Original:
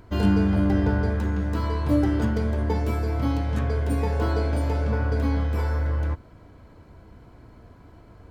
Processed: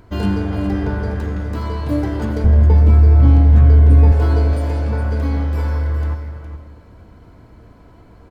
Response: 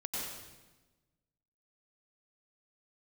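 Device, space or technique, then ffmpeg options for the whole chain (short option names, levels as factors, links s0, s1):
saturated reverb return: -filter_complex "[0:a]asplit=2[s0][s1];[1:a]atrim=start_sample=2205[s2];[s1][s2]afir=irnorm=-1:irlink=0,asoftclip=type=tanh:threshold=0.106,volume=0.562[s3];[s0][s3]amix=inputs=2:normalize=0,asettb=1/sr,asplit=3[s4][s5][s6];[s4]atrim=end=2.444[s7];[s5]atrim=start=2.44:end=4.12,asetpts=PTS-STARTPTS,afade=t=in:d=0.004:c=qsin,afade=t=out:st=1.676:d=0.004:c=qsin,aemphasis=mode=reproduction:type=bsi[s8];[s6]atrim=start=4.116[s9];[s7][s8]acrossfade=d=0.004:c1=hsin:c2=qsin[s10];[s10][s9]acrossfade=d=0.004:c1=qsin:c2=hsin,aecho=1:1:413:0.316"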